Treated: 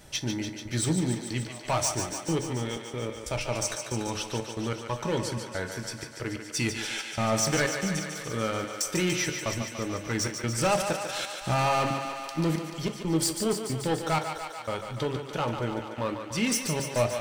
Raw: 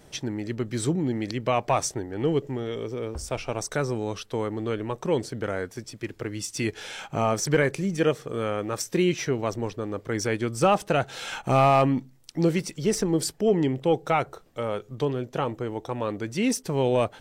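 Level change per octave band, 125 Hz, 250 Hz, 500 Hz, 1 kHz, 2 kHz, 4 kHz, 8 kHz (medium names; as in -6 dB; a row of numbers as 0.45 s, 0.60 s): -2.0 dB, -3.5 dB, -5.5 dB, -3.5 dB, 0.0 dB, +3.0 dB, +3.5 dB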